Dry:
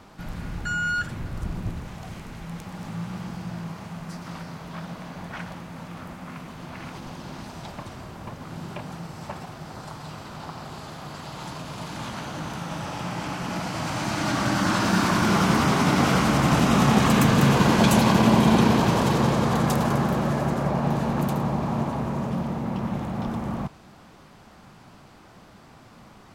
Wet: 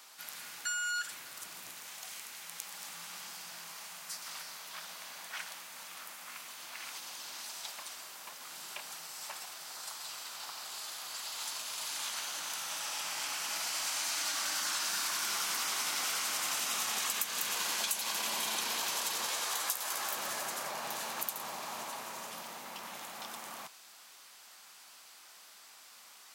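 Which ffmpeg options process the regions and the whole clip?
ffmpeg -i in.wav -filter_complex "[0:a]asettb=1/sr,asplit=3[link_01][link_02][link_03];[link_01]atrim=end=19.274[link_04];[link_02]atrim=start=19.27:end=20.14,asetpts=PTS-STARTPTS,afade=type=in:duration=0.004:curve=qsin,afade=type=out:start_time=0.866:duration=0.004:curve=qsin,highpass=frequency=430:poles=1,asplit=2[link_05][link_06];[link_06]adelay=15,volume=-5dB[link_07];[link_05][link_07]amix=inputs=2:normalize=0,atrim=end_sample=38367[link_08];[link_03]atrim=start=20.136[link_09];[link_04][link_08]acrossfade=duration=0.004:curve1=hsin:curve2=qsin[link_10];[link_10][link_09]acrossfade=duration=0.004:curve1=qsin:curve2=hsin,highpass=frequency=520:poles=1,aderivative,acompressor=threshold=-40dB:ratio=6,volume=8.5dB" out.wav

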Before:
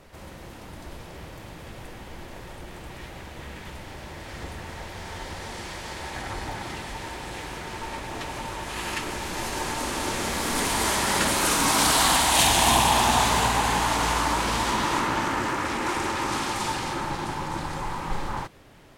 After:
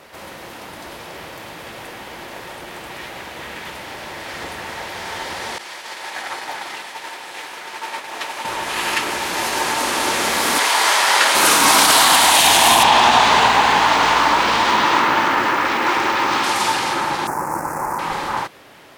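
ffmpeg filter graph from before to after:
ffmpeg -i in.wav -filter_complex "[0:a]asettb=1/sr,asplit=3[link_01][link_02][link_03];[link_01]atrim=end=5.584[link_04];[link_02]atrim=start=5.58:end=8.45,asetpts=PTS-STARTPTS,afade=type=in:duration=0.004:curve=qsin,afade=type=out:start_time=2.866:duration=0.004:curve=qsin,highpass=frequency=520:poles=1,agate=range=-33dB:threshold=-34dB:ratio=3:release=100:detection=peak[link_05];[link_03]atrim=start=8.446[link_06];[link_04][link_05]acrossfade=duration=0.004:curve1=hsin:curve2=qsin[link_07];[link_07][link_06]acrossfade=duration=0.004:curve1=qsin:curve2=hsin,asettb=1/sr,asplit=3[link_08][link_09][link_10];[link_08]atrim=end=10.584[link_11];[link_09]atrim=start=10.58:end=11.35,asetpts=PTS-STARTPTS,afade=type=in:duration=0.004:curve=qsin,afade=type=out:start_time=0.766:duration=0.004:curve=qsin,acrossover=split=7000[link_12][link_13];[link_13]acompressor=threshold=-36dB:ratio=4:attack=1:release=60[link_14];[link_12][link_14]amix=inputs=2:normalize=0,highpass=550,asplit=2[link_15][link_16];[link_16]adelay=26,volume=-11dB[link_17];[link_15][link_17]amix=inputs=2:normalize=0,atrim=end_sample=33957[link_18];[link_10]atrim=start=11.346[link_19];[link_11][link_18]acrossfade=duration=0.004:curve1=hsin:curve2=qsin[link_20];[link_20][link_19]acrossfade=duration=0.004:curve1=qsin:curve2=hsin,asettb=1/sr,asplit=3[link_21][link_22][link_23];[link_21]atrim=end=12.834[link_24];[link_22]atrim=start=12.83:end=16.44,asetpts=PTS-STARTPTS,afade=type=in:duration=0.004:curve=qsin,afade=type=out:start_time=3.606:duration=0.004:curve=qsin,lowpass=4900,acrusher=bits=9:dc=4:mix=0:aa=0.000001[link_25];[link_23]atrim=start=16.436[link_26];[link_24][link_25]acrossfade=duration=0.004:curve1=hsin:curve2=qsin[link_27];[link_27][link_26]acrossfade=duration=0.004:curve1=qsin:curve2=hsin,asettb=1/sr,asplit=3[link_28][link_29][link_30];[link_28]atrim=end=17.274[link_31];[link_29]atrim=start=17.27:end=17.99,asetpts=PTS-STARTPTS,afade=type=in:duration=0.004:curve=qsin,afade=type=out:start_time=0.716:duration=0.004:curve=qsin,acrusher=bits=4:mix=0:aa=0.5,asuperstop=centerf=3400:order=4:qfactor=0.55[link_32];[link_30]atrim=start=17.986[link_33];[link_31][link_32]acrossfade=duration=0.004:curve1=hsin:curve2=qsin[link_34];[link_34][link_33]acrossfade=duration=0.004:curve1=qsin:curve2=hsin,highpass=frequency=580:poles=1,equalizer=frequency=7600:width_type=o:width=0.91:gain=-3.5,alimiter=level_in=12.5dB:limit=-1dB:release=50:level=0:latency=1,volume=-1dB" out.wav

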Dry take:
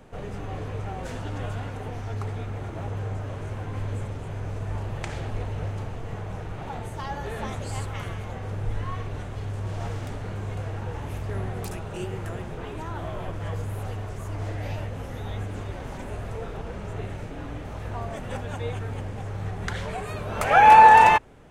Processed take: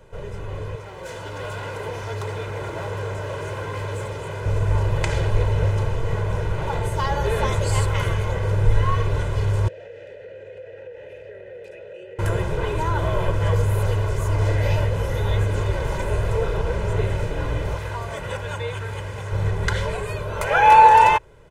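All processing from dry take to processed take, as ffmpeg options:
ffmpeg -i in.wav -filter_complex "[0:a]asettb=1/sr,asplit=3[link_01][link_02][link_03];[link_01]atrim=end=0.754[link_04];[link_02]atrim=start=0.75:end=4.46,asetpts=PTS-STARTPTS,afade=type=in:duration=0.004:curve=qsin,afade=type=out:start_time=3.706:duration=0.004:curve=qsin,highpass=frequency=300:poles=1,asoftclip=type=hard:threshold=-34.5dB[link_05];[link_03]atrim=start=4.456[link_06];[link_04][link_05]acrossfade=duration=0.004:curve1=hsin:curve2=qsin[link_07];[link_07][link_06]acrossfade=duration=0.004:curve1=qsin:curve2=hsin,asettb=1/sr,asplit=3[link_08][link_09][link_10];[link_08]atrim=end=9.684[link_11];[link_09]atrim=start=9.68:end=12.19,asetpts=PTS-STARTPTS,afade=type=in:duration=0.004:curve=qsin,afade=type=out:start_time=2.506:duration=0.004:curve=qsin,asplit=3[link_12][link_13][link_14];[link_12]bandpass=frequency=530:width_type=q:width=8,volume=0dB[link_15];[link_13]bandpass=frequency=1840:width_type=q:width=8,volume=-6dB[link_16];[link_14]bandpass=frequency=2480:width_type=q:width=8,volume=-9dB[link_17];[link_15][link_16][link_17]amix=inputs=3:normalize=0,acompressor=threshold=-47dB:ratio=6:attack=3.2:release=140:knee=1:detection=peak[link_18];[link_10]atrim=start=12.186[link_19];[link_11][link_18]acrossfade=duration=0.004:curve1=hsin:curve2=qsin[link_20];[link_20][link_19]acrossfade=duration=0.004:curve1=qsin:curve2=hsin,asettb=1/sr,asplit=3[link_21][link_22][link_23];[link_21]atrim=end=17.754[link_24];[link_22]atrim=start=17.75:end=19.32,asetpts=PTS-STARTPTS,afade=type=in:duration=0.004:curve=qsin,afade=type=out:start_time=1.566:duration=0.004:curve=qsin,highpass=52,acrossover=split=890|3700[link_25][link_26][link_27];[link_25]acompressor=threshold=-40dB:ratio=4[link_28];[link_26]acompressor=threshold=-42dB:ratio=4[link_29];[link_27]acompressor=threshold=-56dB:ratio=4[link_30];[link_28][link_29][link_30]amix=inputs=3:normalize=0[link_31];[link_23]atrim=start=19.316[link_32];[link_24][link_31]acrossfade=duration=0.004:curve1=hsin:curve2=qsin[link_33];[link_33][link_32]acrossfade=duration=0.004:curve1=qsin:curve2=hsin,aecho=1:1:2:0.72,dynaudnorm=framelen=930:gausssize=3:maxgain=9.5dB,volume=-1dB" out.wav

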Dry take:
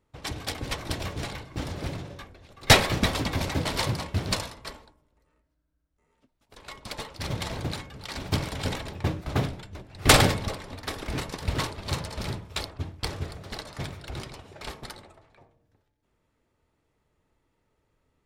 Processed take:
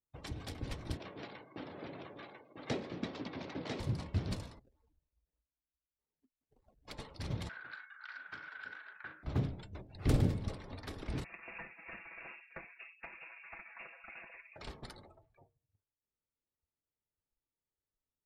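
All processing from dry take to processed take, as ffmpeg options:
ffmpeg -i in.wav -filter_complex "[0:a]asettb=1/sr,asplit=3[link_01][link_02][link_03];[link_01]atrim=end=0.974[link_04];[link_02]atrim=start=0.97:end=3.8,asetpts=PTS-STARTPTS,afade=type=in:duration=0.004:curve=qsin,afade=type=out:start_time=2.826:duration=0.004:curve=qsin,aecho=1:1:996:0.473,atrim=end_sample=124803,adynamicsmooth=sensitivity=8:basefreq=3400,highpass=280,lowpass=5900[link_05];[link_03]atrim=start=3.796[link_06];[link_04][link_05]acrossfade=duration=0.004:curve1=hsin:curve2=qsin[link_07];[link_07][link_06]acrossfade=duration=0.004:curve1=qsin:curve2=hsin,asettb=1/sr,asplit=3[link_08][link_09][link_10];[link_08]atrim=end=4.594[link_11];[link_09]atrim=start=4.59:end=6.88,asetpts=PTS-STARTPTS,afade=type=in:duration=0.004:curve=qsin,afade=type=out:start_time=2.286:duration=0.004:curve=qsin,acompressor=threshold=-56dB:ratio=8:attack=3.2:release=140:knee=1:detection=peak,acrusher=samples=28:mix=1:aa=0.000001:lfo=1:lforange=28:lforate=3.3[link_12];[link_10]atrim=start=6.876[link_13];[link_11][link_12]acrossfade=duration=0.004:curve1=hsin:curve2=qsin[link_14];[link_14][link_13]acrossfade=duration=0.004:curve1=qsin:curve2=hsin,asettb=1/sr,asplit=3[link_15][link_16][link_17];[link_15]atrim=end=7.494[link_18];[link_16]atrim=start=7.49:end=9.23,asetpts=PTS-STARTPTS,afade=type=in:duration=0.004:curve=qsin,afade=type=out:start_time=1.736:duration=0.004:curve=qsin,highpass=frequency=1500:width_type=q:width=15,aemphasis=mode=reproduction:type=riaa,asplit=2[link_19][link_20];[link_20]adelay=38,volume=-7.5dB[link_21];[link_19][link_21]amix=inputs=2:normalize=0,atrim=end_sample=76734[link_22];[link_17]atrim=start=9.226[link_23];[link_18][link_22]acrossfade=duration=0.004:curve1=hsin:curve2=qsin[link_24];[link_24][link_23]acrossfade=duration=0.004:curve1=qsin:curve2=hsin,asettb=1/sr,asplit=3[link_25][link_26][link_27];[link_25]atrim=end=11.244[link_28];[link_26]atrim=start=11.24:end=14.56,asetpts=PTS-STARTPTS,afade=type=in:duration=0.004:curve=qsin,afade=type=out:start_time=3.316:duration=0.004:curve=qsin,highpass=350,aecho=1:1:6.3:0.73,atrim=end_sample=146412,lowpass=frequency=2500:width_type=q:width=0.5098,lowpass=frequency=2500:width_type=q:width=0.6013,lowpass=frequency=2500:width_type=q:width=0.9,lowpass=frequency=2500:width_type=q:width=2.563,afreqshift=-2900[link_29];[link_27]atrim=start=14.556[link_30];[link_28][link_29]acrossfade=duration=0.004:curve1=hsin:curve2=qsin[link_31];[link_31][link_30]acrossfade=duration=0.004:curve1=qsin:curve2=hsin,afftdn=noise_reduction=21:noise_floor=-51,acrossover=split=390[link_32][link_33];[link_33]acompressor=threshold=-42dB:ratio=4[link_34];[link_32][link_34]amix=inputs=2:normalize=0,volume=-6dB" out.wav

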